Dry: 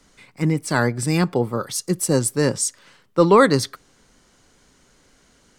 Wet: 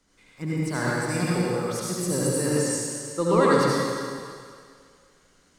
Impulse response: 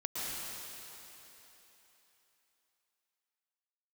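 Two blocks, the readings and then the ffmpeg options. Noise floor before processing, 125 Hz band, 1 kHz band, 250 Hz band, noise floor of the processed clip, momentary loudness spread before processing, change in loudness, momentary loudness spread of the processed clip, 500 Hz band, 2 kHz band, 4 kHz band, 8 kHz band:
-58 dBFS, -4.5 dB, -4.0 dB, -4.5 dB, -61 dBFS, 11 LU, -4.5 dB, 14 LU, -4.0 dB, -3.5 dB, -4.5 dB, -4.0 dB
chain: -filter_complex "[1:a]atrim=start_sample=2205,asetrate=70560,aresample=44100[s0];[0:a][s0]afir=irnorm=-1:irlink=0,volume=0.596"

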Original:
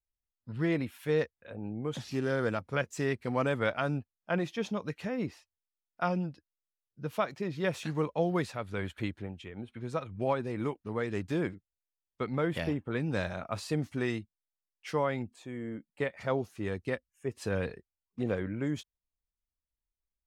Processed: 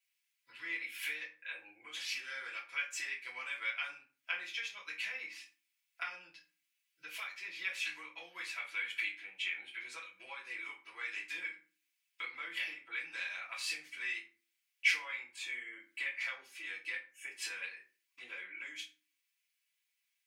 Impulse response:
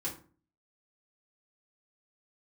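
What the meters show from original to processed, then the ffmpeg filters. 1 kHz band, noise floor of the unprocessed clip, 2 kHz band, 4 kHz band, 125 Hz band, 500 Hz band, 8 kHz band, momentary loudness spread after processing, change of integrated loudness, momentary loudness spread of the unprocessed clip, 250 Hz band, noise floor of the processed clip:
-13.5 dB, under -85 dBFS, +2.5 dB, +4.0 dB, under -40 dB, -28.5 dB, +2.5 dB, 11 LU, -5.5 dB, 10 LU, -32.0 dB, -84 dBFS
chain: -filter_complex "[0:a]acompressor=threshold=0.00708:ratio=12,highpass=f=2300:t=q:w=3.5[s0];[1:a]atrim=start_sample=2205[s1];[s0][s1]afir=irnorm=-1:irlink=0,volume=3.35"

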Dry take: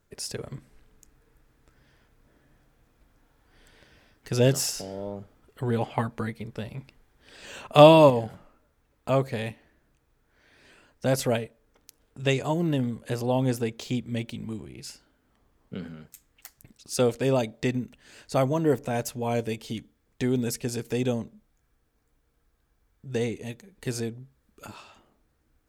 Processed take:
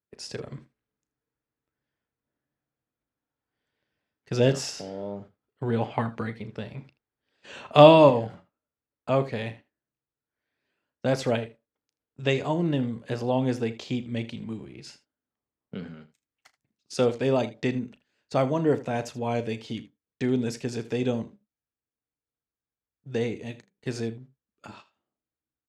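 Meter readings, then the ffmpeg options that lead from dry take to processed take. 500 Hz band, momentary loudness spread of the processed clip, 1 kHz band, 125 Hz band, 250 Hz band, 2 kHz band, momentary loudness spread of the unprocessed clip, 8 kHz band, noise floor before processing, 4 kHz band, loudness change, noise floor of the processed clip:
0.0 dB, 16 LU, +0.5 dB, -1.5 dB, 0.0 dB, 0.0 dB, 19 LU, -7.5 dB, -70 dBFS, -1.0 dB, +0.5 dB, under -85 dBFS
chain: -af "agate=range=0.0708:threshold=0.00631:ratio=16:detection=peak,highpass=100,lowpass=5000,aecho=1:1:35|79:0.188|0.141"

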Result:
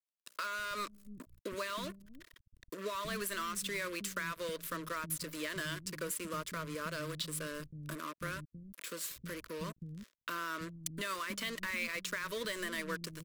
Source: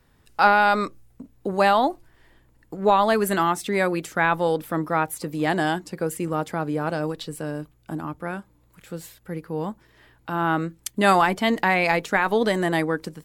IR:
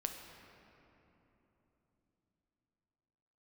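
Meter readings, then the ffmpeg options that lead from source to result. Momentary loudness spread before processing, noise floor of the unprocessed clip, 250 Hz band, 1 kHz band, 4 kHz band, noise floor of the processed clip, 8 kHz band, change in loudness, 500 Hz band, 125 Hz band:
16 LU, -60 dBFS, -18.5 dB, -21.0 dB, -8.0 dB, under -85 dBFS, -3.5 dB, -16.5 dB, -19.0 dB, -15.5 dB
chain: -filter_complex "[0:a]equalizer=f=330:w=0.31:g=-13.5,acontrast=55,alimiter=limit=0.15:level=0:latency=1:release=82,acompressor=threshold=0.0112:ratio=3,acrusher=bits=6:mix=0:aa=0.5,asuperstop=centerf=790:order=8:qfactor=2.5,acrossover=split=230[s0][s1];[s0]adelay=320[s2];[s2][s1]amix=inputs=2:normalize=0,volume=1.12"

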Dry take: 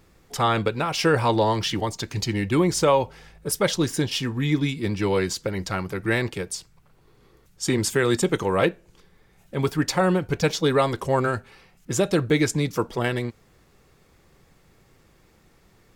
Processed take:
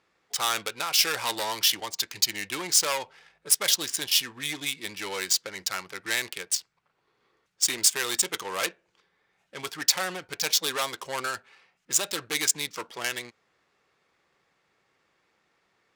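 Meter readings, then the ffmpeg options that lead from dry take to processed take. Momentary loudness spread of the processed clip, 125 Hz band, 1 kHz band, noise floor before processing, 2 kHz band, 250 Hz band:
11 LU, -24.0 dB, -7.5 dB, -59 dBFS, -2.0 dB, -18.5 dB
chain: -af "aeval=exprs='0.398*sin(PI/2*1.78*val(0)/0.398)':c=same,adynamicsmooth=sensitivity=2.5:basefreq=1800,aderivative,volume=1.33"

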